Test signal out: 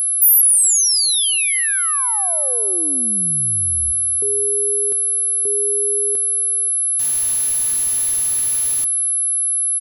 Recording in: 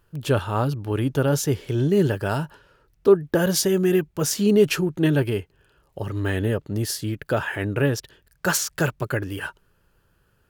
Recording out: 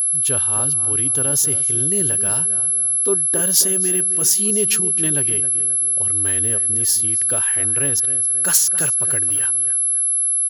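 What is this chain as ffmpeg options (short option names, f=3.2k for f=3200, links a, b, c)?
-filter_complex "[0:a]asplit=2[a][b];[b]adelay=267,lowpass=f=2.3k:p=1,volume=-12.5dB,asplit=2[c][d];[d]adelay=267,lowpass=f=2.3k:p=1,volume=0.47,asplit=2[e][f];[f]adelay=267,lowpass=f=2.3k:p=1,volume=0.47,asplit=2[g][h];[h]adelay=267,lowpass=f=2.3k:p=1,volume=0.47,asplit=2[i][j];[j]adelay=267,lowpass=f=2.3k:p=1,volume=0.47[k];[a][c][e][g][i][k]amix=inputs=6:normalize=0,aeval=exprs='val(0)+0.0501*sin(2*PI*11000*n/s)':c=same,crystalizer=i=5:c=0,volume=-7.5dB"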